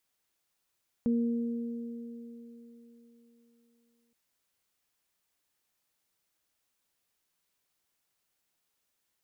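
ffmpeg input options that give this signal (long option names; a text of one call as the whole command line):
ffmpeg -f lavfi -i "aevalsrc='0.0668*pow(10,-3*t/3.68)*sin(2*PI*235*t)+0.0188*pow(10,-3*t/4.08)*sin(2*PI*467*t)':duration=3.07:sample_rate=44100" out.wav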